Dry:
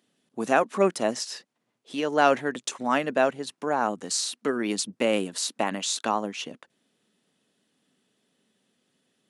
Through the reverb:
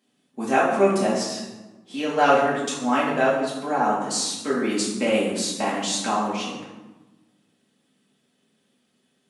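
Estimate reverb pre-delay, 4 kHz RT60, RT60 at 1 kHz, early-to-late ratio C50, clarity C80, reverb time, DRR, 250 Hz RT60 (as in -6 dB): 4 ms, 0.70 s, 1.1 s, 2.5 dB, 5.0 dB, 1.1 s, -7.5 dB, 1.6 s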